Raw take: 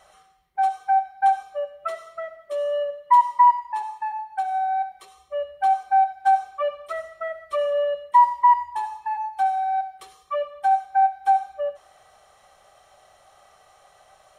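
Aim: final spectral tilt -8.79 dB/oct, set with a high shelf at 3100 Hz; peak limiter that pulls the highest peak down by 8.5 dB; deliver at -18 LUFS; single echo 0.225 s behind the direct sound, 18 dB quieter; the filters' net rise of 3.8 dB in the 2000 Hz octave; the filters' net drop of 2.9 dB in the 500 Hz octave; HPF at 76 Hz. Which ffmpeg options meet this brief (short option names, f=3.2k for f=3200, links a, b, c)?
-af "highpass=76,equalizer=f=500:t=o:g=-4,equalizer=f=2k:t=o:g=3,highshelf=f=3.1k:g=7.5,alimiter=limit=-15.5dB:level=0:latency=1,aecho=1:1:225:0.126,volume=8.5dB"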